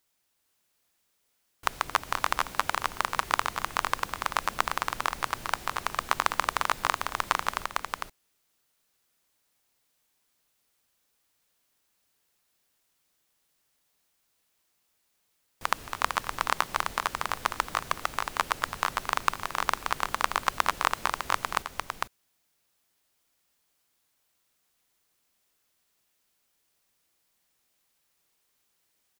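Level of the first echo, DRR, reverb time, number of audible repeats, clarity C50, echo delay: -16.0 dB, no reverb, no reverb, 2, no reverb, 224 ms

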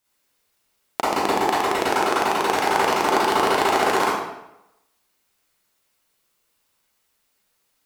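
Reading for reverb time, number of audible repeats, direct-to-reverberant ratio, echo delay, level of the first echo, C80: 0.90 s, no echo, -8.5 dB, no echo, no echo, 2.0 dB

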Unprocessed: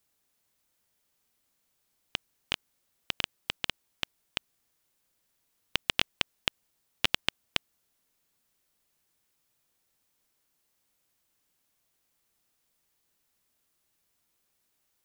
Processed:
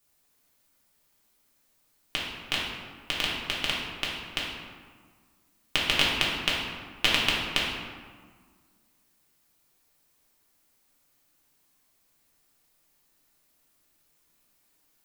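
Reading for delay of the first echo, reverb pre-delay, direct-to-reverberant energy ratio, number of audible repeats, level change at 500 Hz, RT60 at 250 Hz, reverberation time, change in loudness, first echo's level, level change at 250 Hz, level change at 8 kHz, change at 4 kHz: no echo, 3 ms, -6.0 dB, no echo, +7.0 dB, 2.1 s, 1.6 s, +5.0 dB, no echo, +8.5 dB, +6.0 dB, +5.5 dB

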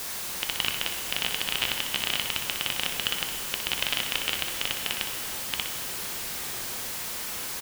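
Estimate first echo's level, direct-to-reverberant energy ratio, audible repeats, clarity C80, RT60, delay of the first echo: -7.5 dB, 2.5 dB, 1, 7.0 dB, 2.9 s, 61 ms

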